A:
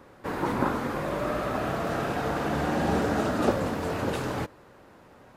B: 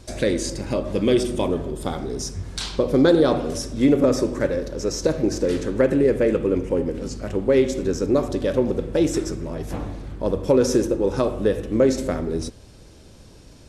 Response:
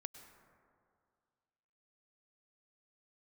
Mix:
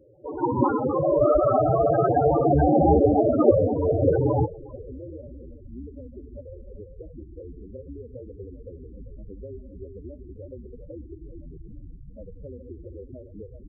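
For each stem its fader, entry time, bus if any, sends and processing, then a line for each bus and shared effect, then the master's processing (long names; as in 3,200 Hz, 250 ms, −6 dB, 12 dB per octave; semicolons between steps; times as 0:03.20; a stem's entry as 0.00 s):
+2.5 dB, 0.00 s, send −20.5 dB, echo send −22 dB, parametric band 210 Hz −7.5 dB 0.64 octaves; automatic gain control gain up to 12 dB
−13.5 dB, 1.95 s, send −12 dB, echo send −6.5 dB, sub-octave generator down 2 octaves, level +2 dB; downward compressor 8 to 1, threshold −23 dBFS, peak gain reduction 14 dB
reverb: on, RT60 2.2 s, pre-delay 93 ms
echo: single-tap delay 394 ms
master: low-pass that shuts in the quiet parts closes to 710 Hz, open at −14 dBFS; spectral peaks only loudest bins 8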